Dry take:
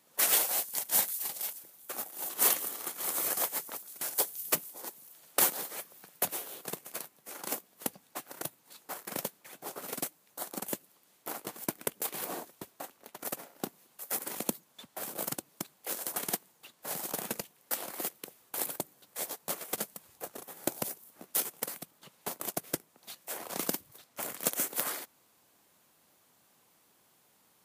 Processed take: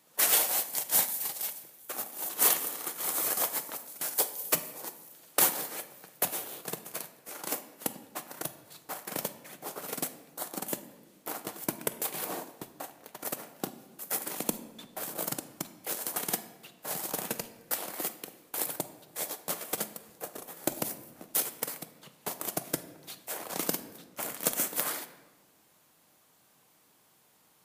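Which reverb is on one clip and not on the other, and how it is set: simulated room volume 840 m³, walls mixed, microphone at 0.51 m; trim +1.5 dB

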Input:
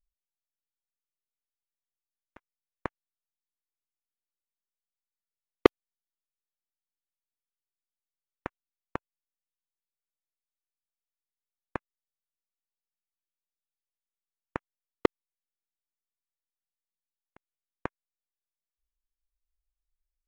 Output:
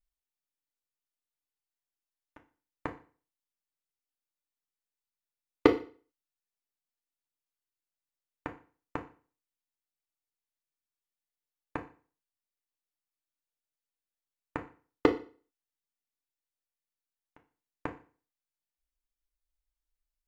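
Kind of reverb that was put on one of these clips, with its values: FDN reverb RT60 0.4 s, low-frequency decay 1×, high-frequency decay 0.95×, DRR 3 dB; trim -3 dB

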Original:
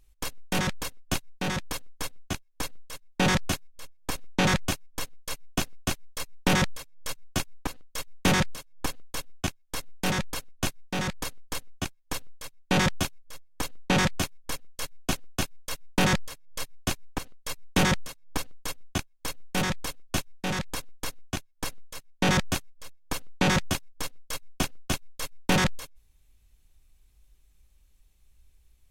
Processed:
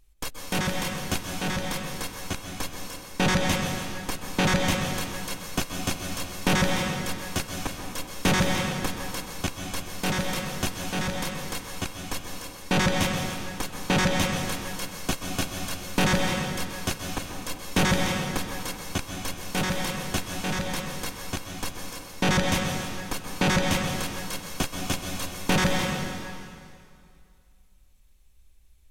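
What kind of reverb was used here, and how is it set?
plate-style reverb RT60 2.3 s, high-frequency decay 0.9×, pre-delay 115 ms, DRR 1.5 dB

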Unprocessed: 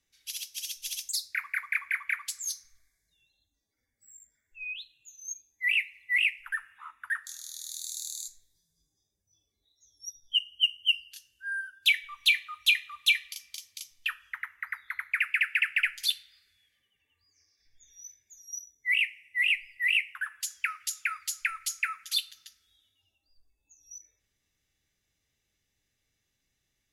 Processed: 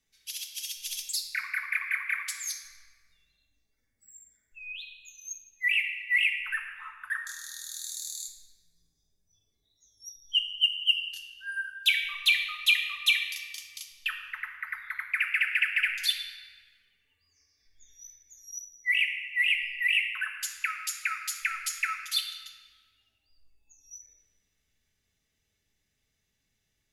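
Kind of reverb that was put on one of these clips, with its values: simulated room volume 2400 m³, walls mixed, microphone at 1.5 m; trim -1 dB

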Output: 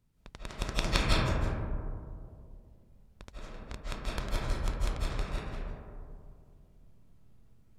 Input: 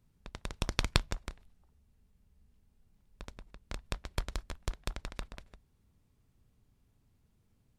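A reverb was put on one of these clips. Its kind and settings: algorithmic reverb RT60 2.4 s, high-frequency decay 0.25×, pre-delay 120 ms, DRR -7.5 dB; trim -3 dB

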